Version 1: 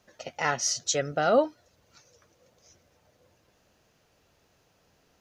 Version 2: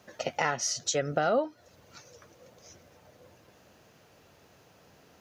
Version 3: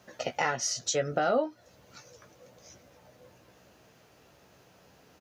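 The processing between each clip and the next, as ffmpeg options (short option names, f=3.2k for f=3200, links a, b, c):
-af "acompressor=threshold=-34dB:ratio=4,highpass=81,equalizer=f=5.9k:t=o:w=2.3:g=-3.5,volume=8.5dB"
-filter_complex "[0:a]asplit=2[a][b];[b]adelay=16,volume=-7dB[c];[a][c]amix=inputs=2:normalize=0,volume=-1dB"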